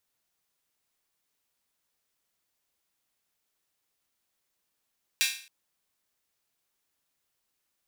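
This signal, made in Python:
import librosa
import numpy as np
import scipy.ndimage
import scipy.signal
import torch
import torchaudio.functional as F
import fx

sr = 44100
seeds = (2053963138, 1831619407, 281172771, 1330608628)

y = fx.drum_hat_open(sr, length_s=0.27, from_hz=2400.0, decay_s=0.45)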